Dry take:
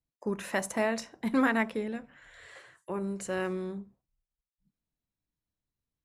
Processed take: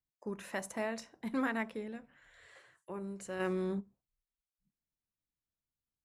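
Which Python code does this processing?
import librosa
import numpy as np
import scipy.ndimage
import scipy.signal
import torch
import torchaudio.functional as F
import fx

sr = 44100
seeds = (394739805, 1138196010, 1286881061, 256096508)

y = fx.env_flatten(x, sr, amount_pct=70, at=(3.39, 3.79), fade=0.02)
y = F.gain(torch.from_numpy(y), -8.0).numpy()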